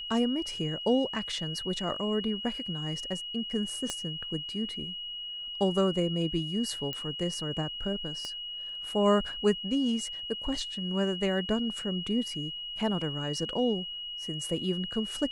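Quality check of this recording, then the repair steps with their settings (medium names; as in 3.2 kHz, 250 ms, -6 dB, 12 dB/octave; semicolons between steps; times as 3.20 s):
whine 2.9 kHz -36 dBFS
3.90 s: pop -18 dBFS
6.93 s: pop -20 dBFS
8.25 s: pop -24 dBFS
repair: de-click; band-stop 2.9 kHz, Q 30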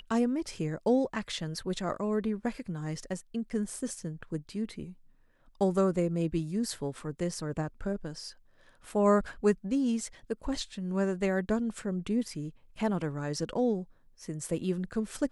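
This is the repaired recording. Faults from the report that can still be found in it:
3.90 s: pop
8.25 s: pop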